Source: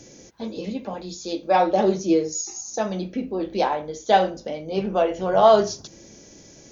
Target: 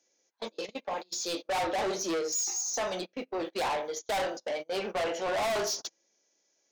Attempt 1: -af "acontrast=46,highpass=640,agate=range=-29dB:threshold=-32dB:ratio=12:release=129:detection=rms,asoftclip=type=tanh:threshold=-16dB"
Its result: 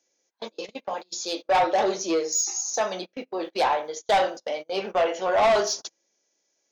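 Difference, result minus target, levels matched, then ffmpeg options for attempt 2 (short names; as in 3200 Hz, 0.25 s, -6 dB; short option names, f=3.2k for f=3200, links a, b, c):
soft clip: distortion -7 dB
-af "acontrast=46,highpass=640,agate=range=-29dB:threshold=-32dB:ratio=12:release=129:detection=rms,asoftclip=type=tanh:threshold=-28dB"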